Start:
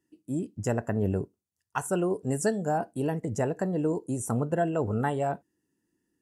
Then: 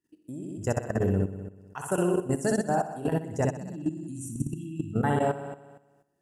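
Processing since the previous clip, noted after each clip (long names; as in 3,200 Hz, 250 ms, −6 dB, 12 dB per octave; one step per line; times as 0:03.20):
time-frequency box erased 0:03.45–0:04.94, 350–2,400 Hz
flutter between parallel walls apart 10.7 metres, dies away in 1.1 s
output level in coarse steps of 13 dB
level +2 dB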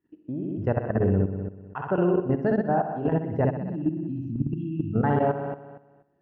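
in parallel at +1.5 dB: brickwall limiter −26 dBFS, peak gain reduction 11.5 dB
on the sum: Gaussian smoothing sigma 3.6 samples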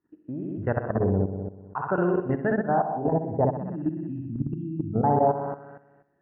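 auto-filter low-pass sine 0.54 Hz 790–1,900 Hz
level −2 dB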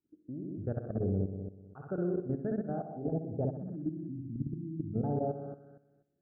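moving average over 45 samples
level −6.5 dB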